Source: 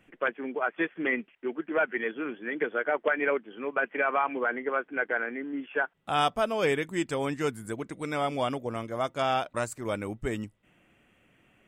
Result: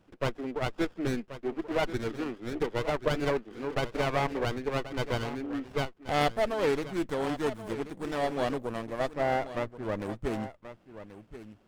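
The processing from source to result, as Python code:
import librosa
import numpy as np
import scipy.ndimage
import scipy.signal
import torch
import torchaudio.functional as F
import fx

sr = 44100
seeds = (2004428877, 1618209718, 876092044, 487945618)

p1 = fx.lowpass(x, sr, hz=1600.0, slope=24, at=(9.1, 10.0))
p2 = p1 + fx.echo_single(p1, sr, ms=1082, db=-13.0, dry=0)
y = fx.running_max(p2, sr, window=17)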